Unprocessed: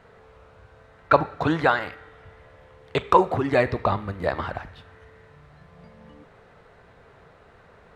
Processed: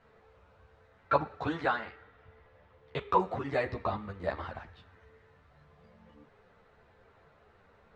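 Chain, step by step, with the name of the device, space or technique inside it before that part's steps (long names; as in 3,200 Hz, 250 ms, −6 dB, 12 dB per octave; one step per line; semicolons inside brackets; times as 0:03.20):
string-machine ensemble chorus (string-ensemble chorus; low-pass filter 7,300 Hz 12 dB per octave)
0:01.76–0:03.20: high-frequency loss of the air 80 metres
level −6.5 dB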